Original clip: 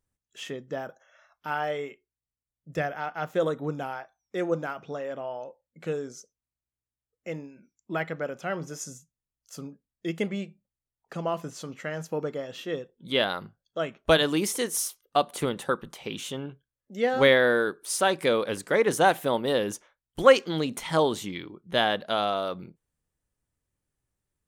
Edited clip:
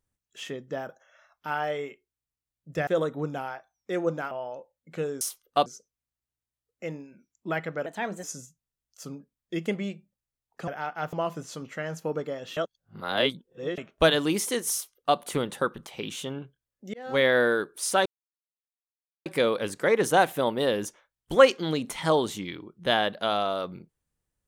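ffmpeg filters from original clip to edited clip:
-filter_complex "[0:a]asplit=13[s0][s1][s2][s3][s4][s5][s6][s7][s8][s9][s10][s11][s12];[s0]atrim=end=2.872[s13];[s1]atrim=start=3.318:end=4.762[s14];[s2]atrim=start=5.198:end=6.102[s15];[s3]atrim=start=14.798:end=15.252[s16];[s4]atrim=start=6.098:end=8.304[s17];[s5]atrim=start=8.3:end=8.76,asetpts=PTS-STARTPTS,asetrate=53802,aresample=44100[s18];[s6]atrim=start=8.756:end=11.202[s19];[s7]atrim=start=2.868:end=3.322[s20];[s8]atrim=start=11.198:end=12.642[s21];[s9]atrim=start=12.638:end=13.852,asetpts=PTS-STARTPTS,areverse[s22];[s10]atrim=start=13.848:end=17.01,asetpts=PTS-STARTPTS,afade=t=out:st=3.158:d=0.004:c=hsin[s23];[s11]atrim=start=17.01:end=18.13,asetpts=PTS-STARTPTS,afade=t=in:d=0.43,afade=t=out:st=1.116:d=0.004:c=hsin,apad=pad_dur=1.2[s24];[s12]atrim=start=18.13,asetpts=PTS-STARTPTS,afade=t=in:d=0.004:c=hsin[s25];[s13][s14]acrossfade=d=0.004:c1=hsin:c2=hsin[s26];[s26][s15]acrossfade=d=0.004:c1=hsin:c2=hsin[s27];[s27][s16]acrossfade=d=0.004:c1=hsin:c2=hsin[s28];[s28][s17]acrossfade=d=0.004:c1=hsin:c2=hsin[s29];[s29][s18]acrossfade=d=0.004:c1=hsin:c2=hsin[s30];[s30][s19]acrossfade=d=0.004:c1=hsin:c2=hsin[s31];[s31][s20]acrossfade=d=0.004:c1=hsin:c2=hsin[s32];[s32][s21]acrossfade=d=0.004:c1=hsin:c2=hsin[s33];[s33][s22]acrossfade=d=0.004:c1=hsin:c2=hsin[s34];[s23][s24][s25]concat=n=3:v=0:a=1[s35];[s34][s35]acrossfade=d=0.004:c1=hsin:c2=hsin"

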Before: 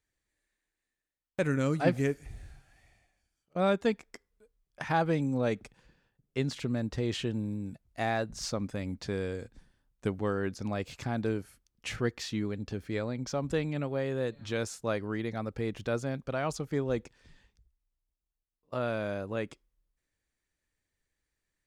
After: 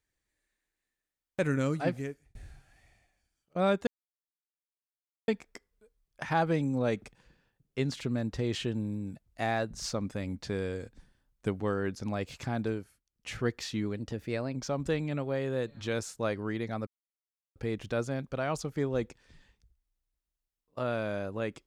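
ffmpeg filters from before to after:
-filter_complex "[0:a]asplit=8[s0][s1][s2][s3][s4][s5][s6][s7];[s0]atrim=end=2.35,asetpts=PTS-STARTPTS,afade=t=out:st=1.59:d=0.76[s8];[s1]atrim=start=2.35:end=3.87,asetpts=PTS-STARTPTS,afade=t=in:d=0.004:c=hsin,afade=t=out:st=1.516:d=0.004:c=hsin,apad=pad_dur=1.41[s9];[s2]atrim=start=3.87:end=11.59,asetpts=PTS-STARTPTS,afade=t=in:d=0.004:c=hsin,afade=t=out:st=7.34:d=0.38:silence=0.211349[s10];[s3]atrim=start=11.59:end=11.65,asetpts=PTS-STARTPTS,volume=0.211[s11];[s4]atrim=start=11.65:end=12.564,asetpts=PTS-STARTPTS,afade=t=in:d=0.38:silence=0.211349[s12];[s5]atrim=start=12.56:end=13.2,asetpts=PTS-STARTPTS,asetrate=48069,aresample=44100[s13];[s6]atrim=start=13.196:end=15.51,asetpts=PTS-STARTPTS,afade=t=out:st=2.31:d=0.004:c=hsin,apad=pad_dur=0.69[s14];[s7]atrim=start=15.51,asetpts=PTS-STARTPTS,afade=t=in:d=0.004:c=hsin[s15];[s8][s9][s10][s11][s12]concat=n=5:v=0:a=1[s16];[s16][s13]acrossfade=d=0.004:c1=hsin:c2=hsin[s17];[s14][s15]concat=n=2:v=0:a=1[s18];[s17][s18]acrossfade=d=0.004:c1=hsin:c2=hsin"

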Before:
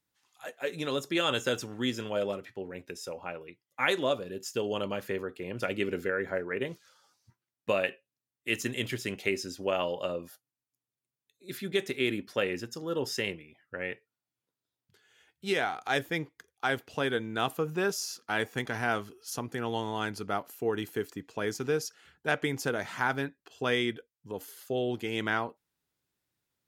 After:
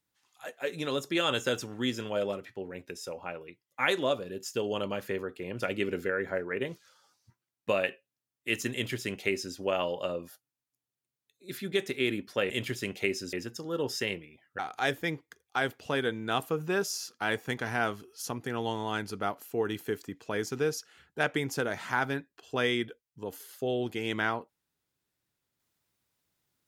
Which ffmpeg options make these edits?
-filter_complex "[0:a]asplit=4[s0][s1][s2][s3];[s0]atrim=end=12.502[s4];[s1]atrim=start=8.728:end=9.562[s5];[s2]atrim=start=12.498:end=13.762[s6];[s3]atrim=start=15.668[s7];[s4][s5]acrossfade=d=0.004:c1=hsin:c2=hsin[s8];[s8][s6]acrossfade=d=0.004:c1=hsin:c2=hsin[s9];[s9][s7]acrossfade=d=0.004:c1=hsin:c2=hsin"

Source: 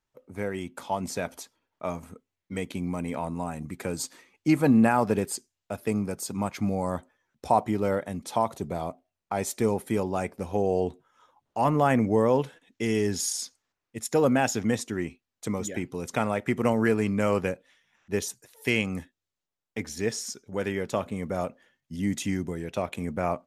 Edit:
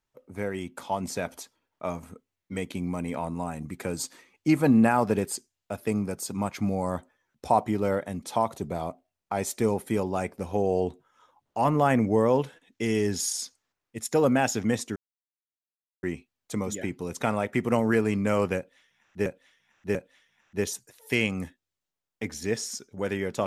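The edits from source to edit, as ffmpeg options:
-filter_complex "[0:a]asplit=4[s0][s1][s2][s3];[s0]atrim=end=14.96,asetpts=PTS-STARTPTS,afade=t=out:st=14.956:d=0.004:c=hsin,apad=pad_dur=1.07[s4];[s1]atrim=start=14.96:end=18.192,asetpts=PTS-STARTPTS,afade=t=in:d=0.004:c=hsin[s5];[s2]atrim=start=17.498:end=18.192[s6];[s3]atrim=start=17.498[s7];[s4][s5]concat=n=2:v=0:a=1[s8];[s8][s6]acrossfade=d=0.004:c1=hsin:c2=hsin[s9];[s9][s7]acrossfade=d=0.004:c1=hsin:c2=hsin"

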